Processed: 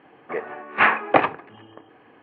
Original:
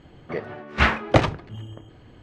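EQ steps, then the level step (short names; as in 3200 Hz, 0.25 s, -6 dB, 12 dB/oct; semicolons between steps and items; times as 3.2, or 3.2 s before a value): speaker cabinet 260–2900 Hz, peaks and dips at 280 Hz +4 dB, 450 Hz +6 dB, 790 Hz +9 dB, 1100 Hz +9 dB, 1700 Hz +8 dB, 2500 Hz +8 dB; -3.5 dB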